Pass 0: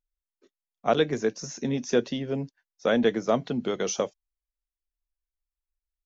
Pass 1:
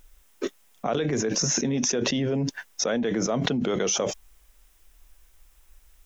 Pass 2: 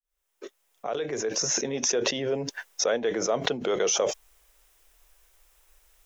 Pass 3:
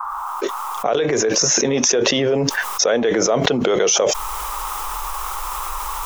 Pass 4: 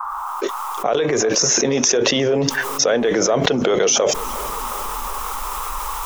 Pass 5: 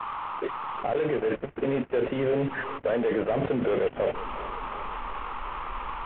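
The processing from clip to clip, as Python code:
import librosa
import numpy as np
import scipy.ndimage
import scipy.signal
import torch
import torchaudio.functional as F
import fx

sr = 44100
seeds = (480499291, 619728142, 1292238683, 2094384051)

y1 = fx.peak_eq(x, sr, hz=4400.0, db=-7.0, octaves=0.28)
y1 = fx.env_flatten(y1, sr, amount_pct=100)
y1 = y1 * librosa.db_to_amplitude(-7.0)
y2 = fx.fade_in_head(y1, sr, length_s=1.71)
y2 = fx.low_shelf_res(y2, sr, hz=320.0, db=-9.0, q=1.5)
y3 = fx.dmg_noise_band(y2, sr, seeds[0], low_hz=820.0, high_hz=1300.0, level_db=-60.0)
y3 = fx.env_flatten(y3, sr, amount_pct=70)
y3 = y3 * librosa.db_to_amplitude(6.5)
y4 = fx.echo_filtered(y3, sr, ms=359, feedback_pct=65, hz=2700.0, wet_db=-17.0)
y5 = fx.cvsd(y4, sr, bps=16000)
y5 = y5 * librosa.db_to_amplitude(-6.5)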